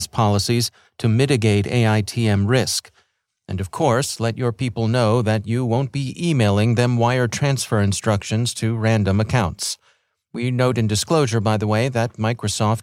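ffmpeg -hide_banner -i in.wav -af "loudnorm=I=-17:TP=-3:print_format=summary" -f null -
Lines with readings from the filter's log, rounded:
Input Integrated:    -19.8 LUFS
Input True Peak:      -3.4 dBTP
Input LRA:             2.2 LU
Input Threshold:     -30.1 LUFS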